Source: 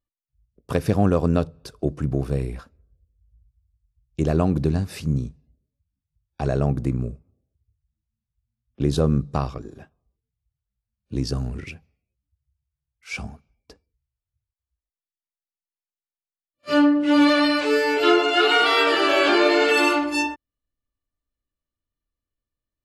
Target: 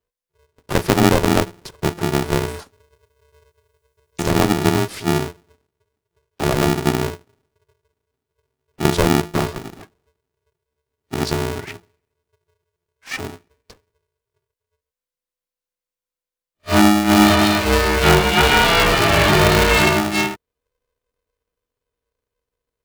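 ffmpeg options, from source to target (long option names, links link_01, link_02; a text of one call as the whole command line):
ffmpeg -i in.wav -filter_complex "[0:a]afreqshift=-240,asettb=1/sr,asplit=3[link_01][link_02][link_03];[link_01]atrim=end=2.484[link_04];[link_02]atrim=start=2.48:end=4.29,asetpts=PTS-STARTPTS,afade=type=in:duration=0.004:curve=qsin,afade=type=out:start_time=1.806:duration=0.004:curve=qsin,bass=frequency=250:gain=-3,treble=frequency=4000:gain=13[link_05];[link_03]atrim=start=4.286[link_06];[link_04][link_05]acrossfade=duration=0.004:curve1=hsin:curve2=qsin[link_07];[link_07][link_06]acrossfade=duration=0.004:curve1=qsin:curve2=hsin,aeval=exprs='val(0)*sgn(sin(2*PI*260*n/s))':channel_layout=same,volume=4dB" out.wav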